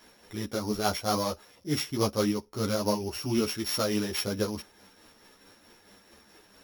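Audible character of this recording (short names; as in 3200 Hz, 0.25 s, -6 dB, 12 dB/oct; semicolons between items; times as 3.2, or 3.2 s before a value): a buzz of ramps at a fixed pitch in blocks of 8 samples; tremolo triangle 4.6 Hz, depth 50%; a shimmering, thickened sound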